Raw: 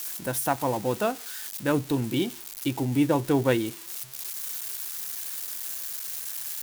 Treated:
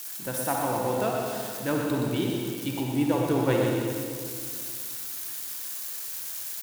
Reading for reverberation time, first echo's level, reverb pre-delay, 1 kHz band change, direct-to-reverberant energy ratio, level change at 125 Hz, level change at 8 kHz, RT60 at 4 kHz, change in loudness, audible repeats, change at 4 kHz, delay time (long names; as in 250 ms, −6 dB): 2.4 s, −6.5 dB, 39 ms, +0.5 dB, −1.5 dB, 0.0 dB, −1.0 dB, 2.0 s, −0.5 dB, 1, −0.5 dB, 121 ms